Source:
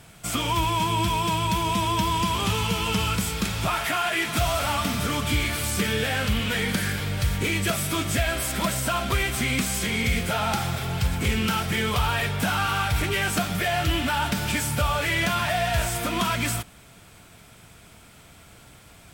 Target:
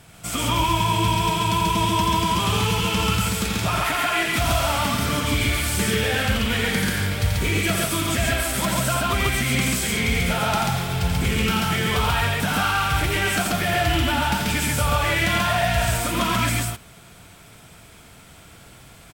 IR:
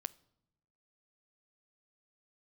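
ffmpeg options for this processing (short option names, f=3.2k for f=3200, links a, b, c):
-af "aecho=1:1:84.55|137:0.562|0.891"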